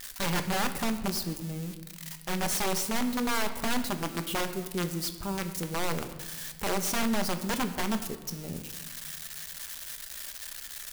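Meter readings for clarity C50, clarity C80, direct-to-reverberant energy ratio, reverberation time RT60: 11.0 dB, 12.5 dB, 7.0 dB, 1.4 s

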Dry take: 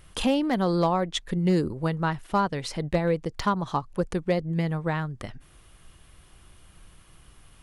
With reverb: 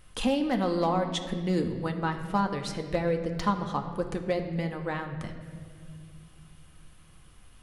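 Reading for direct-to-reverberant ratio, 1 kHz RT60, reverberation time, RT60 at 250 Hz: 4.0 dB, 1.7 s, 2.1 s, 3.4 s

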